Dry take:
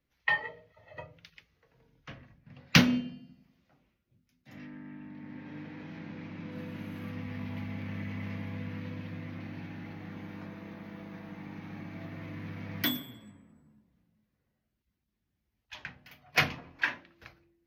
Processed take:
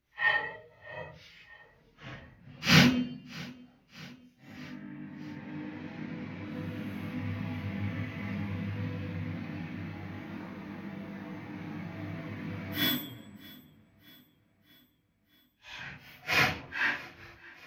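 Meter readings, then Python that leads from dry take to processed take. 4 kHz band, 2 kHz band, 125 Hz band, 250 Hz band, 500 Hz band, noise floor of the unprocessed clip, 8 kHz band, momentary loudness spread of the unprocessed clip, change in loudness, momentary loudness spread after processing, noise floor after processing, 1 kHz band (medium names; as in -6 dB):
+2.5 dB, +2.5 dB, +2.5 dB, +1.5 dB, +2.5 dB, -81 dBFS, +2.0 dB, 20 LU, +2.0 dB, 22 LU, -68 dBFS, +2.5 dB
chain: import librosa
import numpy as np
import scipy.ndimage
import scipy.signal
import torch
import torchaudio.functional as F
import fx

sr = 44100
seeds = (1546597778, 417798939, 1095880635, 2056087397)

y = fx.phase_scramble(x, sr, seeds[0], window_ms=200)
y = fx.echo_feedback(y, sr, ms=628, feedback_pct=58, wet_db=-22.5)
y = F.gain(torch.from_numpy(y), 2.5).numpy()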